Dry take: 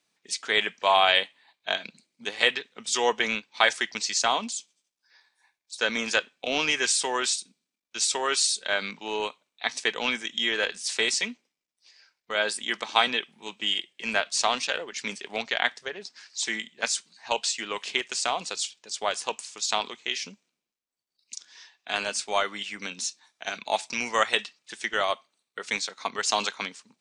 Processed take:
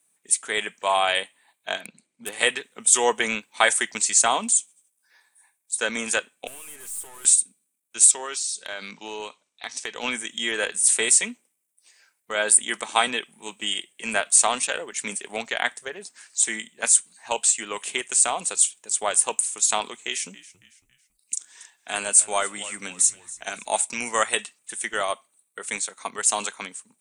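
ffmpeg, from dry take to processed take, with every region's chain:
-filter_complex "[0:a]asettb=1/sr,asplit=3[s0][s1][s2];[s0]atrim=end=1.804[s3];[s1]atrim=start=1.8:end=2.33,asetpts=PTS-STARTPTS,afade=t=in:d=0.004:c=qsin,afade=t=out:st=0.526:d=0.004:c=qsin,lowpass=4600,volume=29.9,asoftclip=hard,volume=0.0335[s4];[s2]atrim=start=2.326[s5];[s3][s4]acrossfade=d=0.004:c1=hsin:c2=qsin[s6];[s6][s5]acrossfade=d=0.004:c1=qsin:c2=hsin,asettb=1/sr,asplit=3[s7][s8][s9];[s7]atrim=end=6.474[s10];[s8]atrim=start=6.47:end=7.25,asetpts=PTS-STARTPTS,afade=t=in:d=0.004:c=qsin,afade=t=out:st=0.776:d=0.004:c=qsin,aecho=1:1:4.8:0.34,atrim=end_sample=34398,acrossover=split=230|840[s11][s12][s13];[s11]acompressor=threshold=0.00178:ratio=4[s14];[s12]acompressor=threshold=0.0112:ratio=4[s15];[s13]acompressor=threshold=0.0316:ratio=4[s16];[s14][s15][s16]amix=inputs=3:normalize=0,aeval=exprs='(tanh(178*val(0)+0.75)-tanh(0.75))/178':c=same[s17];[s9]atrim=start=7.246[s18];[s10][s17]acrossfade=d=0.004:c1=hsin:c2=qsin[s19];[s19][s18]acrossfade=d=0.004:c1=qsin:c2=hsin,asettb=1/sr,asplit=3[s20][s21][s22];[s20]atrim=end=8.114[s23];[s21]atrim=start=8.11:end=10.03,asetpts=PTS-STARTPTS,afade=t=in:d=0.004:c=qsin,afade=t=out:st=1.916:d=0.004:c=qsin,lowpass=f=5300:t=q:w=3.2,acompressor=threshold=0.0316:ratio=2.5:attack=3.2:release=140:knee=1:detection=peak[s24];[s22]atrim=start=10.026[s25];[s23][s24]acrossfade=d=0.004:c1=hsin:c2=qsin[s26];[s26][s25]acrossfade=d=0.004:c1=qsin:c2=hsin,asettb=1/sr,asplit=3[s27][s28][s29];[s27]atrim=end=19.984[s30];[s28]atrim=start=19.98:end=23.85,asetpts=PTS-STARTPTS,afade=t=in:d=0.004:c=qsin,afade=t=out:st=3.866:d=0.004:c=qsin,equalizer=f=7800:w=2.5:g=4,asplit=4[s31][s32][s33][s34];[s32]adelay=277,afreqshift=-79,volume=0.119[s35];[s33]adelay=554,afreqshift=-158,volume=0.049[s36];[s34]adelay=831,afreqshift=-237,volume=0.02[s37];[s31][s35][s36][s37]amix=inputs=4:normalize=0,atrim=end_sample=170667[s38];[s29]atrim=start=23.846[s39];[s30][s38]acrossfade=d=0.004:c1=hsin:c2=qsin[s40];[s40][s39]acrossfade=d=0.004:c1=qsin:c2=hsin,highshelf=f=6800:t=q:w=3:g=12.5,dynaudnorm=f=130:g=31:m=3.76,volume=0.891"

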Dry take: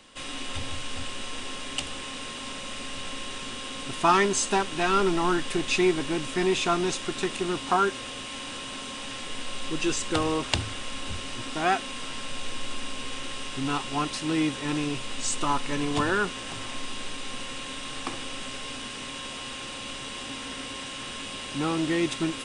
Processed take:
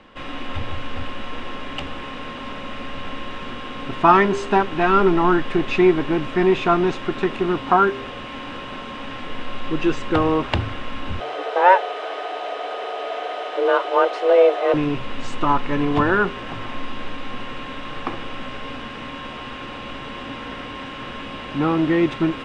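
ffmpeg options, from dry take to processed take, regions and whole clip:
-filter_complex "[0:a]asettb=1/sr,asplit=3[s0][s1][s2];[s0]atrim=end=11.204[s3];[s1]atrim=start=11.2:end=14.74,asetpts=PTS-STARTPTS,afade=t=in:d=0.004:c=qsin,afade=t=out:st=3.536:d=0.004:c=qsin,highpass=150,equalizer=f=480:t=o:w=0.84:g=12.5,afreqshift=180[s4];[s2]atrim=start=14.736[s5];[s3][s4]acrossfade=d=0.004:c1=hsin:c2=qsin[s6];[s6][s5]acrossfade=d=0.004:c1=qsin:c2=hsin,lowpass=1900,bandreject=f=133.2:t=h:w=4,bandreject=f=266.4:t=h:w=4,bandreject=f=399.6:t=h:w=4,bandreject=f=532.8:t=h:w=4,bandreject=f=666:t=h:w=4,bandreject=f=799.2:t=h:w=4,volume=2.51"

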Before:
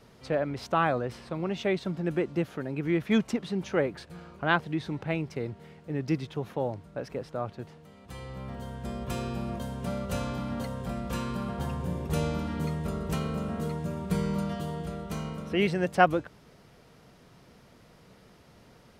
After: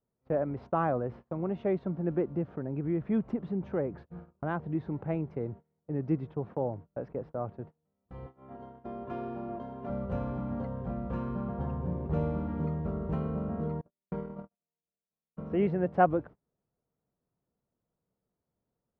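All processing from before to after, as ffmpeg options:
-filter_complex "[0:a]asettb=1/sr,asplit=3[s0][s1][s2];[s0]atrim=end=2.304[s3];[s1]atrim=start=2.3:end=4.75,asetpts=PTS-STARTPTS,afade=t=in:d=0.004:c=qsin,afade=t=out:st=2.446:d=0.004:c=qsin,lowshelf=f=190:g=5,acompressor=threshold=0.0282:ratio=1.5:attack=3.2:release=140:knee=1:detection=peak[s4];[s2]atrim=start=4.746[s5];[s3][s4]acrossfade=d=0.004:c1=hsin:c2=qsin[s6];[s6][s5]acrossfade=d=0.004:c1=qsin:c2=hsin,asettb=1/sr,asplit=3[s7][s8][s9];[s7]atrim=end=8.264[s10];[s8]atrim=start=8.26:end=9.9,asetpts=PTS-STARTPTS,afade=t=in:d=0.004:c=qsin,afade=t=out:st=1.636:d=0.004:c=qsin,highpass=140,lowpass=6800,lowshelf=f=210:g=-5,aecho=1:1:2.9:0.59,atrim=end_sample=72324[s11];[s9]atrim=start=9.896[s12];[s10][s11]acrossfade=d=0.004:c1=hsin:c2=qsin[s13];[s13][s12]acrossfade=d=0.004:c1=qsin:c2=hsin,asettb=1/sr,asplit=3[s14][s15][s16];[s14]atrim=end=13.814[s17];[s15]atrim=start=13.81:end=15.37,asetpts=PTS-STARTPTS,afade=t=in:d=0.004:c=qsin,afade=t=out:st=1.556:d=0.004:c=qsin,lowpass=f=3100:p=1,equalizer=f=97:t=o:w=1.7:g=-14.5,agate=range=0.0282:threshold=0.02:ratio=16:release=100:detection=peak[s18];[s16]atrim=start=15.366[s19];[s17][s18]acrossfade=d=0.004:c1=hsin:c2=qsin[s20];[s20][s19]acrossfade=d=0.004:c1=qsin:c2=hsin,agate=range=0.0398:threshold=0.00794:ratio=16:detection=peak,lowpass=1000,volume=0.891"

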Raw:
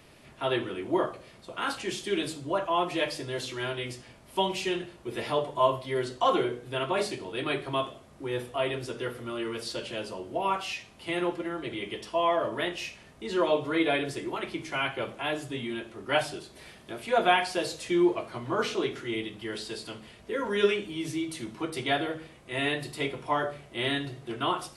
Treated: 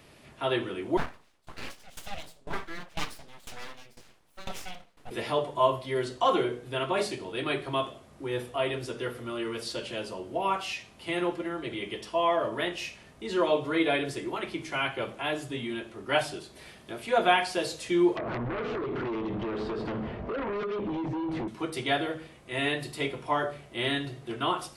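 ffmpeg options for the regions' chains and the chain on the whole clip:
-filter_complex "[0:a]asettb=1/sr,asplit=3[s0][s1][s2];[s0]atrim=end=0.974[s3];[s1]atrim=start=0.97:end=5.11,asetpts=PTS-STARTPTS,afade=t=in:d=0.004:c=qsin,afade=t=out:st=4.136:d=0.004:c=qsin,aeval=exprs='abs(val(0))':c=same,aeval=exprs='val(0)*pow(10,-19*if(lt(mod(2*n/s,1),2*abs(2)/1000),1-mod(2*n/s,1)/(2*abs(2)/1000),(mod(2*n/s,1)-2*abs(2)/1000)/(1-2*abs(2)/1000))/20)':c=same[s4];[s2]atrim=start=5.106[s5];[s3][s4]acrossfade=d=0.004:c1=hsin:c2=qsin[s6];[s6][s5]acrossfade=d=0.004:c1=qsin:c2=hsin,asettb=1/sr,asplit=3[s7][s8][s9];[s7]atrim=end=18.174[s10];[s8]atrim=start=18.17:end=21.48,asetpts=PTS-STARTPTS,afade=t=in:d=0.004:c=qsin,afade=t=out:st=3.306:d=0.004:c=qsin,lowpass=1100,acompressor=threshold=0.00891:ratio=12:attack=3.2:release=140:knee=1:detection=peak,aeval=exprs='0.0355*sin(PI/2*5.01*val(0)/0.0355)':c=same[s11];[s9]atrim=start=21.476[s12];[s10][s11]acrossfade=d=0.004:c1=hsin:c2=qsin[s13];[s13][s12]acrossfade=d=0.004:c1=qsin:c2=hsin"

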